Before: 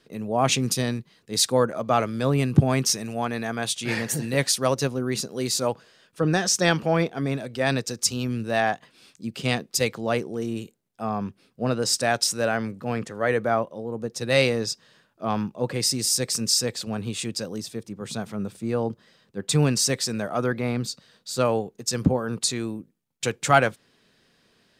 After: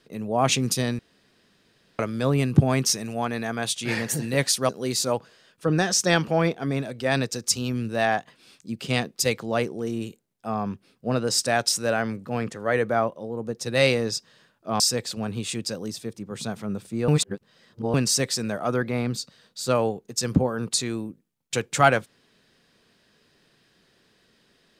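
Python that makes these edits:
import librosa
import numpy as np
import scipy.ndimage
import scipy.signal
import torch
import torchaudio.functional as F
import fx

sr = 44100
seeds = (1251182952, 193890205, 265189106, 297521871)

y = fx.edit(x, sr, fx.room_tone_fill(start_s=0.99, length_s=1.0),
    fx.cut(start_s=4.69, length_s=0.55),
    fx.cut(start_s=15.35, length_s=1.15),
    fx.reverse_span(start_s=18.78, length_s=0.86), tone=tone)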